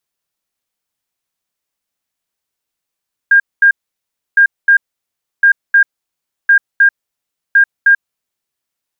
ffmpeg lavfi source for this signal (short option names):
-f lavfi -i "aevalsrc='0.631*sin(2*PI*1610*t)*clip(min(mod(mod(t,1.06),0.31),0.09-mod(mod(t,1.06),0.31))/0.005,0,1)*lt(mod(t,1.06),0.62)':d=5.3:s=44100"